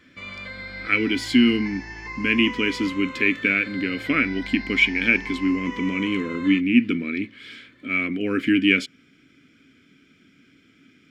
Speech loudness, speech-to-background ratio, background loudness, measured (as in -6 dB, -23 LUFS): -21.5 LUFS, 13.0 dB, -34.5 LUFS